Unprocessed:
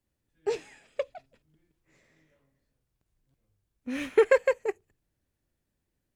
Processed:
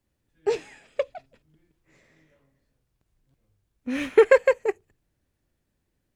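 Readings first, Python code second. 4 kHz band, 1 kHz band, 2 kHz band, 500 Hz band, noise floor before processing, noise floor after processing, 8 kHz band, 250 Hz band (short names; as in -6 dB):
+4.0 dB, +5.0 dB, +4.5 dB, +5.0 dB, -82 dBFS, -77 dBFS, n/a, +5.0 dB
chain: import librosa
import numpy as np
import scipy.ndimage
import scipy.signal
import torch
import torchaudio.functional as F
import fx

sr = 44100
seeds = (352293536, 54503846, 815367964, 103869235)

y = fx.high_shelf(x, sr, hz=5900.0, db=-4.0)
y = F.gain(torch.from_numpy(y), 5.0).numpy()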